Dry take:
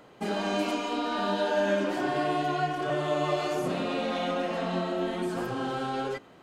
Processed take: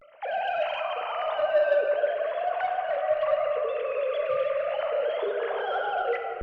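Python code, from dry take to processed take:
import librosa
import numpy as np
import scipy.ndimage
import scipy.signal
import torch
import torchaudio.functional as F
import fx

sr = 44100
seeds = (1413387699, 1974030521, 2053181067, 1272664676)

p1 = fx.sine_speech(x, sr)
p2 = p1 + fx.echo_single(p1, sr, ms=313, db=-11.0, dry=0)
p3 = fx.rider(p2, sr, range_db=4, speed_s=2.0)
p4 = 10.0 ** (-19.0 / 20.0) * np.tanh(p3 / 10.0 ** (-19.0 / 20.0))
p5 = fx.room_shoebox(p4, sr, seeds[0], volume_m3=170.0, walls='hard', distance_m=0.33)
y = fx.vibrato(p5, sr, rate_hz=0.41, depth_cents=62.0)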